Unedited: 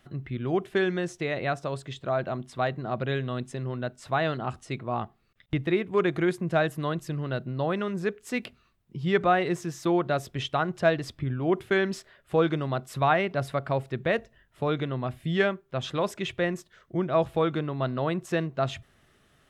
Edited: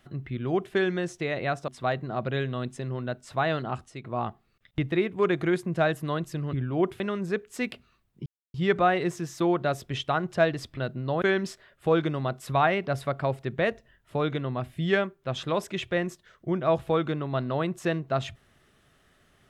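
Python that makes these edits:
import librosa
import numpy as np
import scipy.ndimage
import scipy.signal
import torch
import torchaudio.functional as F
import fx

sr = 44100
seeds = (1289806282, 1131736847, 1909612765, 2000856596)

y = fx.edit(x, sr, fx.cut(start_s=1.68, length_s=0.75),
    fx.fade_out_to(start_s=4.47, length_s=0.32, floor_db=-10.5),
    fx.swap(start_s=7.28, length_s=0.45, other_s=11.22, other_length_s=0.47),
    fx.insert_silence(at_s=8.99, length_s=0.28), tone=tone)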